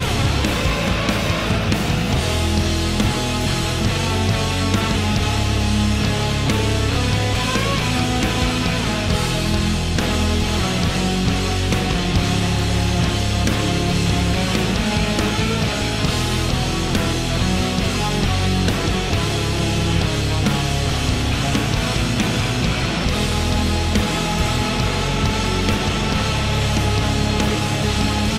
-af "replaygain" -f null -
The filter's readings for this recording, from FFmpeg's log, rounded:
track_gain = +3.4 dB
track_peak = 0.325